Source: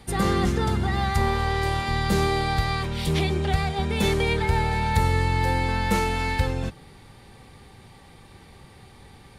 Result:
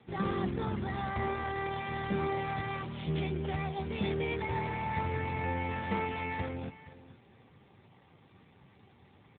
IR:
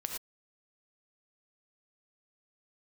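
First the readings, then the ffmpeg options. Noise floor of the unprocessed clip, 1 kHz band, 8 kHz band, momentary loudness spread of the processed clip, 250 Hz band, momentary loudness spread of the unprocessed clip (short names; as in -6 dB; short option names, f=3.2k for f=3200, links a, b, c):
-50 dBFS, -9.0 dB, under -40 dB, 4 LU, -8.5 dB, 3 LU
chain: -af "aecho=1:1:469:0.15,volume=-8dB" -ar 8000 -c:a libopencore_amrnb -b:a 7400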